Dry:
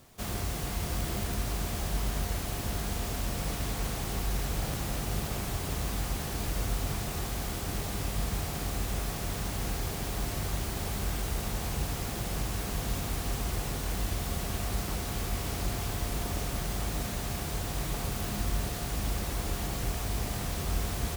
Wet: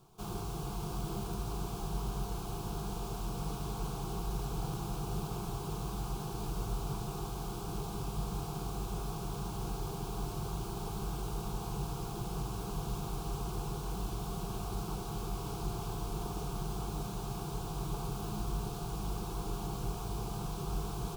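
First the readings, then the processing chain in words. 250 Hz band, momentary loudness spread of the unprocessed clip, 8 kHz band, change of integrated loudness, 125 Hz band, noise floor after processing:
-3.0 dB, 1 LU, -10.0 dB, -5.5 dB, -4.5 dB, -41 dBFS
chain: high shelf 3500 Hz -11 dB; fixed phaser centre 380 Hz, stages 8

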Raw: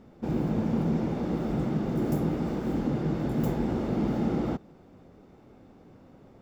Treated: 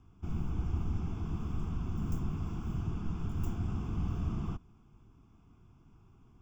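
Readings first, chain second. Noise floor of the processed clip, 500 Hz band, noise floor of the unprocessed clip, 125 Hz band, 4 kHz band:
-62 dBFS, -18.5 dB, -54 dBFS, -4.0 dB, -8.5 dB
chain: frequency shift -150 Hz; fixed phaser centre 2800 Hz, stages 8; gain -5 dB

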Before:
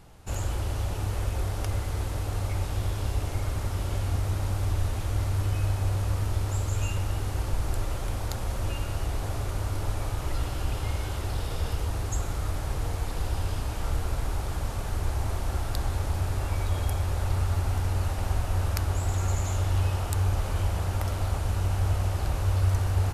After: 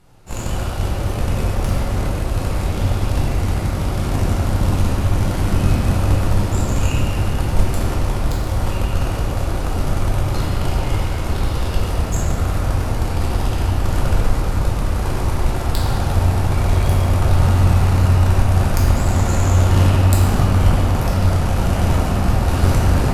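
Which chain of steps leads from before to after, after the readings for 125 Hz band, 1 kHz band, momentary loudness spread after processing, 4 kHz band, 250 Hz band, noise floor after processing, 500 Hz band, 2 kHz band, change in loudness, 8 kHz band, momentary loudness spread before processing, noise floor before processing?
+10.5 dB, +11.5 dB, 7 LU, +9.5 dB, +16.5 dB, -23 dBFS, +12.0 dB, +11.0 dB, +10.5 dB, +8.0 dB, 5 LU, -32 dBFS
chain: added harmonics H 2 -7 dB, 7 -21 dB, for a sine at -11.5 dBFS; shoebox room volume 140 m³, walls hard, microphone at 0.93 m; gain +5 dB

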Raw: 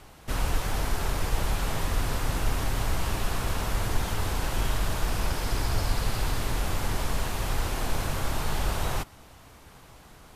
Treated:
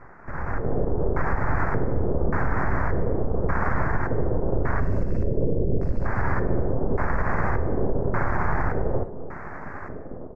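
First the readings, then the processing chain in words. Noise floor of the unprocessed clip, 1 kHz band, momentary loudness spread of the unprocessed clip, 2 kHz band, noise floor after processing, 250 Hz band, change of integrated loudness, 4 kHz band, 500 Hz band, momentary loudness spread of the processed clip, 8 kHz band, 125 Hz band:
-51 dBFS, +4.5 dB, 1 LU, +4.0 dB, -36 dBFS, +8.0 dB, +4.0 dB, under -30 dB, +9.5 dB, 9 LU, under -25 dB, +4.5 dB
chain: LPF 5000 Hz 12 dB/oct; spectral delete 4.8–6.05, 610–2600 Hz; compressor 12:1, threshold -32 dBFS, peak gain reduction 14.5 dB; limiter -29.5 dBFS, peak gain reduction 4.5 dB; AGC gain up to 12.5 dB; full-wave rectifier; LFO low-pass square 0.86 Hz 470–1900 Hz; Butterworth band-stop 3300 Hz, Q 0.66; speakerphone echo 0.1 s, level -22 dB; non-linear reverb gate 0.4 s falling, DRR 10.5 dB; gain +5 dB

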